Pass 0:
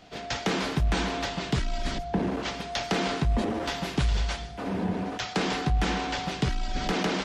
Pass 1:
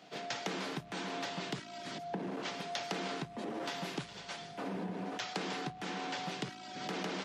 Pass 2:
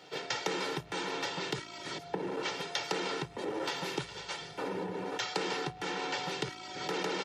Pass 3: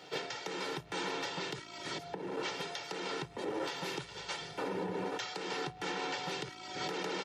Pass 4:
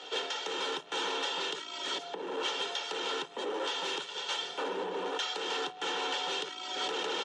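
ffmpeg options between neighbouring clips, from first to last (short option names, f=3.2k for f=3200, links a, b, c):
-af "acompressor=threshold=-31dB:ratio=4,highpass=f=150:w=0.5412,highpass=f=150:w=1.3066,equalizer=f=230:t=o:w=0.28:g=-4.5,volume=-4dB"
-af "aecho=1:1:2.2:0.71,volume=3dB"
-af "alimiter=level_in=4dB:limit=-24dB:level=0:latency=1:release=408,volume=-4dB,volume=1.5dB"
-af "asoftclip=type=tanh:threshold=-34dB,highpass=f=290:w=0.5412,highpass=f=290:w=1.3066,equalizer=f=330:t=q:w=4:g=-7,equalizer=f=660:t=q:w=4:g=-5,equalizer=f=2.1k:t=q:w=4:g=-8,equalizer=f=3.2k:t=q:w=4:g=7,equalizer=f=4.8k:t=q:w=4:g=-6,lowpass=f=8k:w=0.5412,lowpass=f=8k:w=1.3066,volume=7.5dB"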